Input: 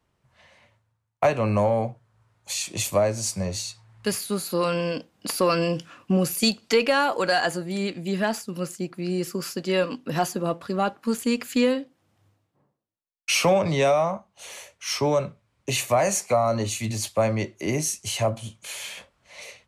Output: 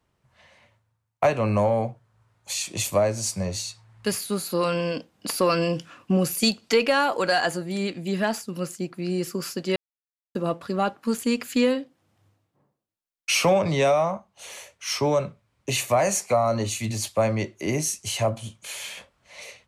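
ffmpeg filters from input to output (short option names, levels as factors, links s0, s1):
-filter_complex "[0:a]asplit=3[s0][s1][s2];[s0]atrim=end=9.76,asetpts=PTS-STARTPTS,afade=t=out:st=9.756:d=0.004:c=hsin[s3];[s1]atrim=start=9.76:end=10.35,asetpts=PTS-STARTPTS,volume=0[s4];[s2]atrim=start=10.35,asetpts=PTS-STARTPTS,afade=t=in:d=0.004:c=hsin[s5];[s3][s4][s5]concat=n=3:v=0:a=1"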